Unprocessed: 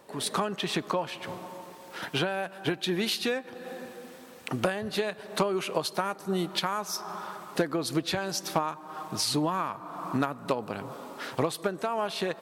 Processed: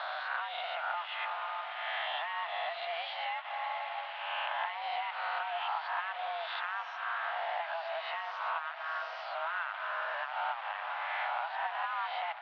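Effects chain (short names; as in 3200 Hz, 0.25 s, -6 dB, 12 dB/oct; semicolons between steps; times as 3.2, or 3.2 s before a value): spectral swells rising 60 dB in 1.04 s; compressor 8:1, threshold -34 dBFS, peak gain reduction 16 dB; bit-crush 7-bit; on a send: diffused feedback echo 0.991 s, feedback 62%, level -12.5 dB; on the sum: mistuned SSB +330 Hz 340–2900 Hz; gain +3 dB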